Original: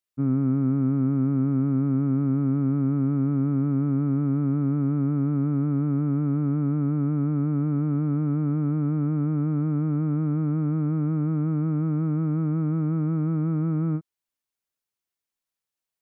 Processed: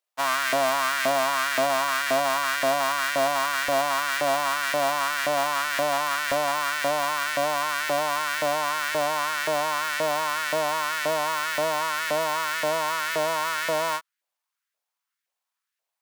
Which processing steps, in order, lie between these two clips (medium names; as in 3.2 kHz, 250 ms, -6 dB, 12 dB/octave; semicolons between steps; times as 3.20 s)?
square wave that keeps the level; LFO high-pass saw up 1.9 Hz 550–1800 Hz